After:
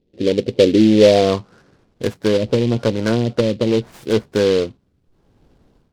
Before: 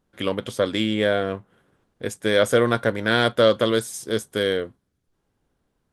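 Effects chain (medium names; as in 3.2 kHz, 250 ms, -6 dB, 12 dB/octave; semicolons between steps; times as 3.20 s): median filter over 5 samples; low-pass that closes with the level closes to 300 Hz, closed at -14.5 dBFS; tilt shelf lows +6 dB, about 1.3 kHz; level rider gain up to 14 dB; saturation -5 dBFS, distortion -18 dB; low-pass sweep 430 Hz -> 6.8 kHz, 0.85–2.36 s; delay time shaken by noise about 3.1 kHz, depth 0.053 ms; trim -1 dB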